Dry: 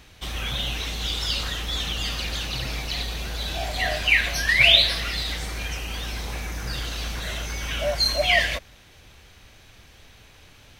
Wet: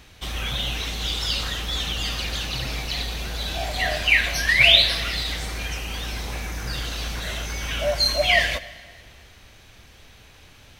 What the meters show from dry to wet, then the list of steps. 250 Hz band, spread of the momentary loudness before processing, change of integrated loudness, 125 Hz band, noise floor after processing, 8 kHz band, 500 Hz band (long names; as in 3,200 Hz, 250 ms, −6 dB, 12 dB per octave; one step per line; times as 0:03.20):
+1.0 dB, 14 LU, +1.0 dB, +1.0 dB, −50 dBFS, +1.0 dB, +1.5 dB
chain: dense smooth reverb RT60 1.9 s, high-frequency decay 0.95×, DRR 15 dB
level +1 dB